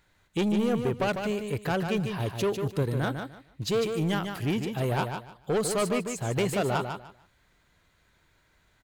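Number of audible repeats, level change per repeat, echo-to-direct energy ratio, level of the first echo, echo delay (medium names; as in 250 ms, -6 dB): 3, -13.0 dB, -6.5 dB, -6.5 dB, 149 ms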